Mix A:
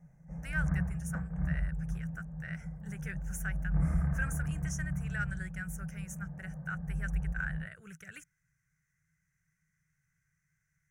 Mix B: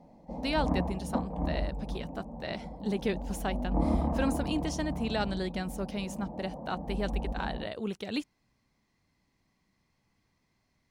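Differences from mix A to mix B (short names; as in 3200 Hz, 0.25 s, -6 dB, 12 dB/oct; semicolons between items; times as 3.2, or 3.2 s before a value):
speech +6.0 dB; master: remove EQ curve 110 Hz 0 dB, 160 Hz +10 dB, 230 Hz -24 dB, 480 Hz -16 dB, 1000 Hz -18 dB, 1500 Hz +13 dB, 2400 Hz -2 dB, 4200 Hz -26 dB, 6000 Hz +7 dB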